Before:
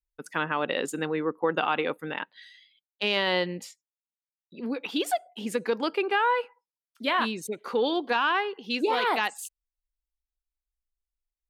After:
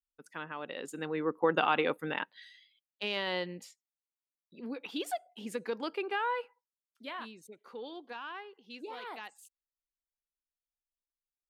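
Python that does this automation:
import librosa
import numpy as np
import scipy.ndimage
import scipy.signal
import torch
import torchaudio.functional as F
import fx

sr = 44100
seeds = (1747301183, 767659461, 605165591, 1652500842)

y = fx.gain(x, sr, db=fx.line((0.75, -13.0), (1.38, -1.5), (2.17, -1.5), (3.07, -8.5), (6.41, -8.5), (7.34, -18.0)))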